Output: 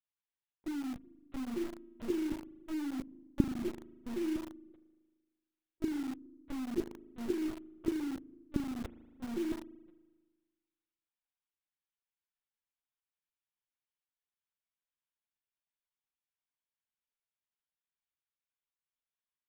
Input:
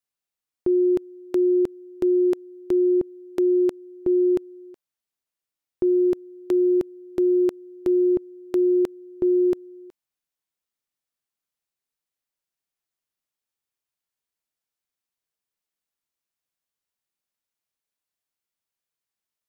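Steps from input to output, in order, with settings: repeated pitch sweeps -8.5 st, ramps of 0.52 s; HPF 670 Hz 12 dB/oct; LPC vocoder at 8 kHz pitch kept; spring tank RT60 1.4 s, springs 38 ms, chirp 70 ms, DRR 9 dB; in parallel at -3.5 dB: bit-crush 6-bit; on the sum: gain -7.5 dB

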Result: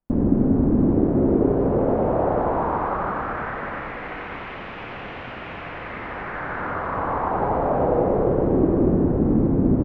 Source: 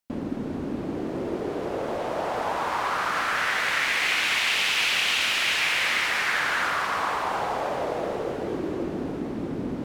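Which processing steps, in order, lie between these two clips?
vocal rider within 3 dB; LPF 1300 Hz 12 dB/oct; tilt -3.5 dB/oct; echo 89 ms -4 dB; Schroeder reverb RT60 3.5 s, combs from 33 ms, DRR 7.5 dB

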